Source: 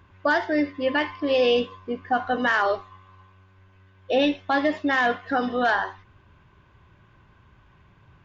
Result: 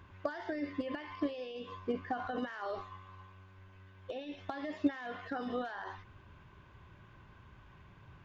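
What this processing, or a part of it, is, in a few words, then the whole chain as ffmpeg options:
de-esser from a sidechain: -filter_complex "[0:a]asplit=2[a][b];[b]highpass=4.7k,apad=whole_len=363606[c];[a][c]sidechaincompress=threshold=-59dB:ratio=10:attack=2.1:release=42,volume=-1.5dB"

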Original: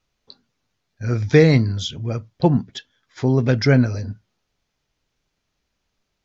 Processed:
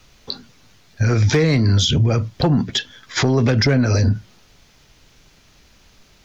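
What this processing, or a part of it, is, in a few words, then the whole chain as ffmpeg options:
mastering chain: -filter_complex "[0:a]equalizer=f=680:t=o:w=2.7:g=-3,acrossover=split=290|660[a][b][c];[a]acompressor=threshold=-28dB:ratio=4[d];[b]acompressor=threshold=-28dB:ratio=4[e];[c]acompressor=threshold=-32dB:ratio=4[f];[d][e][f]amix=inputs=3:normalize=0,acompressor=threshold=-35dB:ratio=1.5,asoftclip=type=tanh:threshold=-19.5dB,asoftclip=type=hard:threshold=-24dB,alimiter=level_in=32dB:limit=-1dB:release=50:level=0:latency=1,volume=-8.5dB"

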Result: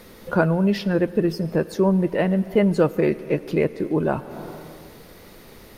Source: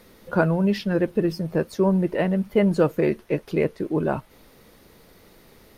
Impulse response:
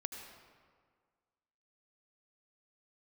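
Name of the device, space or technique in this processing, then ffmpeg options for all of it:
ducked reverb: -filter_complex "[0:a]asplit=3[a][b][c];[1:a]atrim=start_sample=2205[d];[b][d]afir=irnorm=-1:irlink=0[e];[c]apad=whole_len=254478[f];[e][f]sidechaincompress=threshold=-33dB:ratio=8:attack=16:release=336,volume=3dB[g];[a][g]amix=inputs=2:normalize=0"

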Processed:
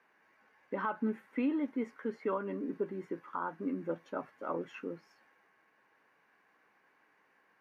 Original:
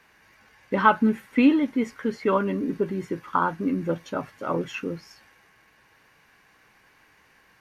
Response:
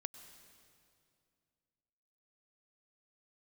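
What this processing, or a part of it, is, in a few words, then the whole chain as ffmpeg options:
DJ mixer with the lows and highs turned down: -filter_complex "[0:a]acrossover=split=200 2100:gain=0.0794 1 0.224[a][b][c];[a][b][c]amix=inputs=3:normalize=0,alimiter=limit=-16dB:level=0:latency=1:release=175,volume=-8dB"

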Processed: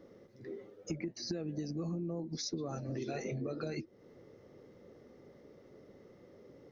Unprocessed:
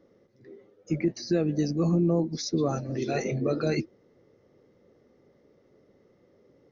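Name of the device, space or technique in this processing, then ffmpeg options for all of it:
serial compression, leveller first: -af "acompressor=threshold=-27dB:ratio=2,acompressor=threshold=-41dB:ratio=5,volume=4dB"

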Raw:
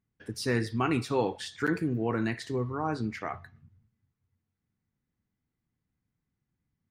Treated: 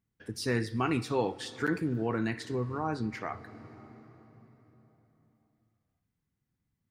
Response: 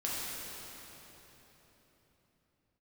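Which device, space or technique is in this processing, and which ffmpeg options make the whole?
ducked reverb: -filter_complex "[0:a]asplit=3[a][b][c];[1:a]atrim=start_sample=2205[d];[b][d]afir=irnorm=-1:irlink=0[e];[c]apad=whole_len=304364[f];[e][f]sidechaincompress=threshold=-31dB:ratio=8:attack=8.1:release=647,volume=-16dB[g];[a][g]amix=inputs=2:normalize=0,volume=-2dB"

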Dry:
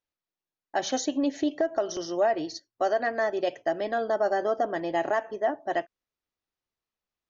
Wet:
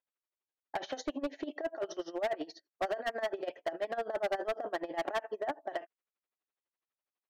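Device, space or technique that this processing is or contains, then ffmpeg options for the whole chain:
helicopter radio: -af "highpass=370,lowpass=2.9k,aeval=exprs='val(0)*pow(10,-21*(0.5-0.5*cos(2*PI*12*n/s))/20)':c=same,asoftclip=type=hard:threshold=-30dB,volume=2dB"

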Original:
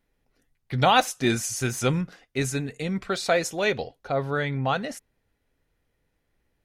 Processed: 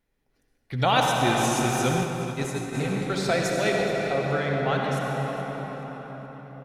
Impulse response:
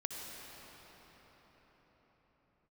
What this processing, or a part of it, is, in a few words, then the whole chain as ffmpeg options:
cathedral: -filter_complex "[1:a]atrim=start_sample=2205[a];[0:a][a]afir=irnorm=-1:irlink=0,asplit=3[b][c][d];[b]afade=t=out:st=2.03:d=0.02[e];[c]agate=range=-33dB:threshold=-21dB:ratio=3:detection=peak,afade=t=in:st=2.03:d=0.02,afade=t=out:st=2.73:d=0.02[f];[d]afade=t=in:st=2.73:d=0.02[g];[e][f][g]amix=inputs=3:normalize=0,aecho=1:1:425|850|1275:0.158|0.0475|0.0143"

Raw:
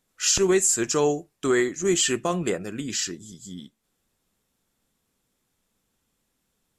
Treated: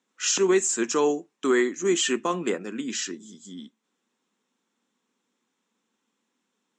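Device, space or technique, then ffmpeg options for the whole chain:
television speaker: -af "highpass=f=220:w=0.5412,highpass=f=220:w=1.3066,equalizer=f=230:t=q:w=4:g=5,equalizer=f=640:t=q:w=4:g=-7,equalizer=f=1k:t=q:w=4:g=4,equalizer=f=4.7k:t=q:w=4:g=-7,lowpass=f=7k:w=0.5412,lowpass=f=7k:w=1.3066"

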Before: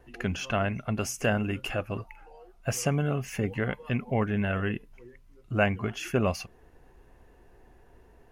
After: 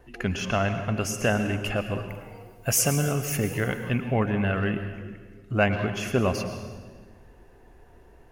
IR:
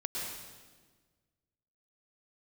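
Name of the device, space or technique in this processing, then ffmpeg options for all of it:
saturated reverb return: -filter_complex "[0:a]asettb=1/sr,asplit=3[a][b][c];[a]atrim=end=2.094[d];[b]atrim=start=2.09:end=3.85,asetpts=PTS-STARTPTS,afade=t=in:d=0.004:c=qsin,afade=t=out:st=1.756:d=0.004:c=qsin,aemphasis=mode=production:type=50fm[e];[c]atrim=start=3.846[f];[d][e]acrossfade=d=0.004:c1=hsin:c2=qsin[g];[g][f]acrossfade=d=0.004:c1=qsin:c2=hsin,asplit=2[h][i];[1:a]atrim=start_sample=2205[j];[i][j]afir=irnorm=-1:irlink=0,asoftclip=type=tanh:threshold=-17.5dB,volume=-6.5dB[k];[h][k]amix=inputs=2:normalize=0"

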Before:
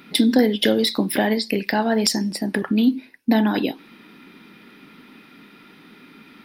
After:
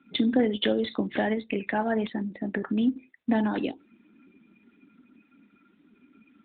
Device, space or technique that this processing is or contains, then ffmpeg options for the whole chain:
mobile call with aggressive noise cancelling: -filter_complex "[0:a]asplit=3[a][b][c];[a]afade=t=out:st=2.44:d=0.02[d];[b]aemphasis=mode=reproduction:type=cd,afade=t=in:st=2.44:d=0.02,afade=t=out:st=2.97:d=0.02[e];[c]afade=t=in:st=2.97:d=0.02[f];[d][e][f]amix=inputs=3:normalize=0,highpass=f=180:p=1,afftdn=nr=15:nf=-39,volume=-5dB" -ar 8000 -c:a libopencore_amrnb -b:a 12200

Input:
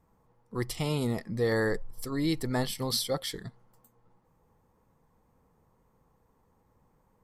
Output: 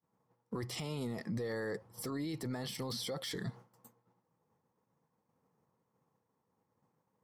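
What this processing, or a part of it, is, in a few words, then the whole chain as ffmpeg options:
broadcast voice chain: -af "highpass=f=110:w=0.5412,highpass=f=110:w=1.3066,deesser=0.85,acompressor=threshold=-41dB:ratio=3,equalizer=f=5.6k:t=o:w=0.26:g=4,alimiter=level_in=16.5dB:limit=-24dB:level=0:latency=1:release=15,volume=-16.5dB,agate=range=-33dB:threshold=-56dB:ratio=3:detection=peak,highshelf=f=8.1k:g=-4,volume=10dB"

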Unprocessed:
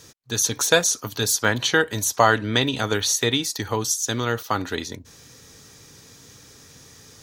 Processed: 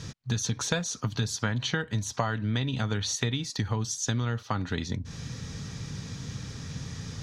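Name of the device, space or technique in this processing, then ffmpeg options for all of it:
jukebox: -af "lowpass=5.3k,lowshelf=f=250:t=q:w=1.5:g=9.5,acompressor=threshold=-33dB:ratio=5,volume=5.5dB"

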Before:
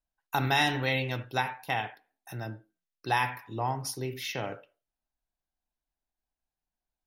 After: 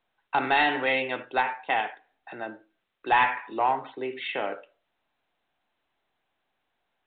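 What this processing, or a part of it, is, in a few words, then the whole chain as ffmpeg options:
telephone: -filter_complex "[0:a]asettb=1/sr,asplit=3[a][b][c];[a]atrim=end=3.124[d];[b]atrim=start=3.12:end=3.93,asetpts=PTS-STARTPTS,afade=t=in:d=0.004:c=qsin,afade=t=out:st=0.806:d=0.004:c=qsin,equalizer=f=1.7k:w=0.38:g=4[e];[c]atrim=start=3.926[f];[d][e]acrossfade=d=0.004:c1=hsin:c2=qsin[g];[g][f]acrossfade=d=0.004:c1=qsin:c2=hsin,highpass=f=150:w=0.5412,highpass=f=150:w=1.3066,highpass=340,lowpass=3.1k,asoftclip=type=tanh:threshold=-20dB,volume=6.5dB" -ar 8000 -c:a pcm_mulaw

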